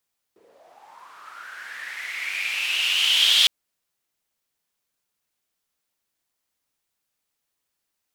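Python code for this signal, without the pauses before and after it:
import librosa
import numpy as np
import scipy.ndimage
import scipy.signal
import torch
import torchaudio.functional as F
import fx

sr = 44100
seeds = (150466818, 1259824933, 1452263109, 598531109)

y = fx.riser_noise(sr, seeds[0], length_s=3.11, colour='white', kind='bandpass', start_hz=370.0, end_hz=3400.0, q=7.5, swell_db=33, law='linear')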